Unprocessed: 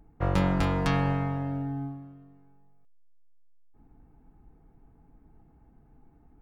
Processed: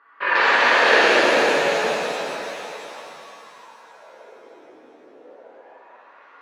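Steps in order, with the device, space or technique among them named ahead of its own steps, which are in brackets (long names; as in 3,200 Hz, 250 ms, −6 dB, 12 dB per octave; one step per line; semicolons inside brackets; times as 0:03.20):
voice changer toy (ring modulator whose carrier an LFO sweeps 710 Hz, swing 60%, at 0.32 Hz; loudspeaker in its box 450–4,900 Hz, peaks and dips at 500 Hz +4 dB, 760 Hz −9 dB, 1,100 Hz −8 dB, 1,700 Hz +9 dB, 2,700 Hz +5 dB, 4,400 Hz +8 dB)
reverb with rising layers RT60 3.4 s, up +7 semitones, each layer −8 dB, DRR −10.5 dB
level +4 dB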